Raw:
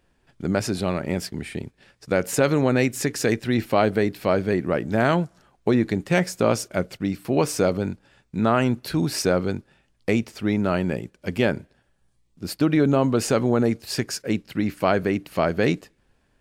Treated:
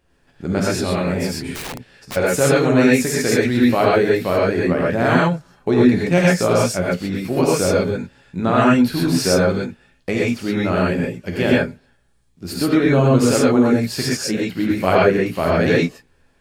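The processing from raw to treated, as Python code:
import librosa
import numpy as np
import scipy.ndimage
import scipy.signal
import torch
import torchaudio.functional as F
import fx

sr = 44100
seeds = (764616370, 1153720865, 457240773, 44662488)

y = fx.chorus_voices(x, sr, voices=6, hz=1.4, base_ms=14, depth_ms=3.0, mix_pct=25)
y = fx.rev_gated(y, sr, seeds[0], gate_ms=150, shape='rising', drr_db=-5.0)
y = fx.overflow_wrap(y, sr, gain_db=26.0, at=(1.54, 2.15), fade=0.02)
y = y * librosa.db_to_amplitude(2.0)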